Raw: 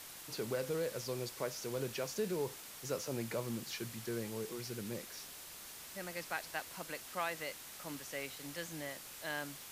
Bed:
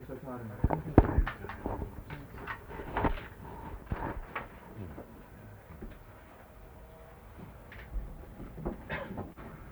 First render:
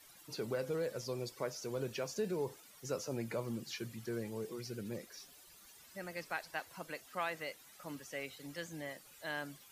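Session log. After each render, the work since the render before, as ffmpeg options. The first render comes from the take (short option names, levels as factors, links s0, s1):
-af "afftdn=nr=14:nf=-51"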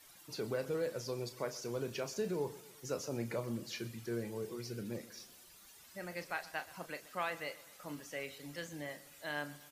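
-filter_complex "[0:a]asplit=2[s0][s1];[s1]adelay=34,volume=0.282[s2];[s0][s2]amix=inputs=2:normalize=0,aecho=1:1:126|252|378|504:0.119|0.0594|0.0297|0.0149"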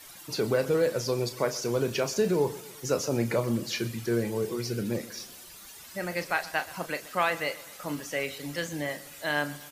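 -af "volume=3.76"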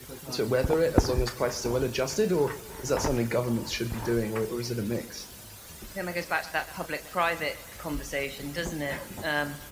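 -filter_complex "[1:a]volume=0.891[s0];[0:a][s0]amix=inputs=2:normalize=0"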